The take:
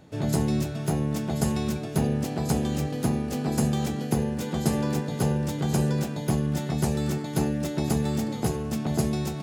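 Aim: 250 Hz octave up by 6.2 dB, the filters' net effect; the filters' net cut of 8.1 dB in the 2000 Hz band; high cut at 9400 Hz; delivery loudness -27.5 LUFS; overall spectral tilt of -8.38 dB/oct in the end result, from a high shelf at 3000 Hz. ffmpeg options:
-af "lowpass=9.4k,equalizer=f=250:t=o:g=8,equalizer=f=2k:t=o:g=-8,highshelf=f=3k:g=-8.5,volume=-4.5dB"

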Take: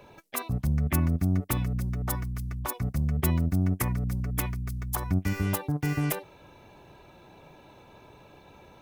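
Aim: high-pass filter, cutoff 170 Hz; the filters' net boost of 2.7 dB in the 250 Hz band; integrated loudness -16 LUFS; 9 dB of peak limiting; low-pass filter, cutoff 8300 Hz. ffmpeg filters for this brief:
-af "highpass=170,lowpass=8.3k,equalizer=f=250:t=o:g=6,volume=18dB,alimiter=limit=-5.5dB:level=0:latency=1"

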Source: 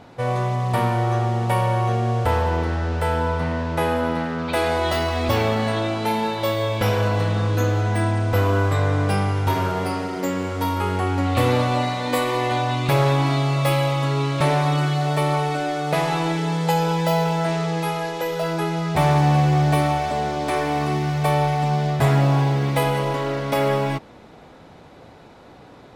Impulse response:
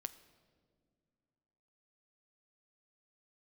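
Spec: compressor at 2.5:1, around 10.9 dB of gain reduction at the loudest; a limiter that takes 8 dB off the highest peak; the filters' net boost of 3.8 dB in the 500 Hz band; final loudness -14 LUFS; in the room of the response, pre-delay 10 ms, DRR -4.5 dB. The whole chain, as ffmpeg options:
-filter_complex "[0:a]equalizer=f=500:t=o:g=4.5,acompressor=threshold=-30dB:ratio=2.5,alimiter=limit=-22dB:level=0:latency=1,asplit=2[a][b];[1:a]atrim=start_sample=2205,adelay=10[c];[b][c]afir=irnorm=-1:irlink=0,volume=7.5dB[d];[a][d]amix=inputs=2:normalize=0,volume=11.5dB"

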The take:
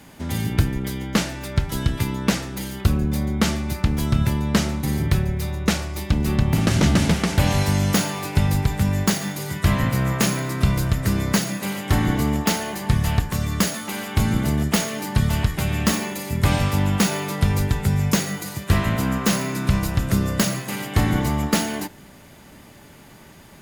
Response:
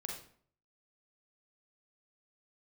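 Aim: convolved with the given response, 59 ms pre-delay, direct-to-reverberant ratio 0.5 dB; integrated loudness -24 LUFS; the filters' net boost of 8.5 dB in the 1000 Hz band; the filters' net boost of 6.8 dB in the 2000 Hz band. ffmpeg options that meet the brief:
-filter_complex "[0:a]equalizer=f=1k:t=o:g=9,equalizer=f=2k:t=o:g=5.5,asplit=2[a][b];[1:a]atrim=start_sample=2205,adelay=59[c];[b][c]afir=irnorm=-1:irlink=0,volume=0.5dB[d];[a][d]amix=inputs=2:normalize=0,volume=-6.5dB"

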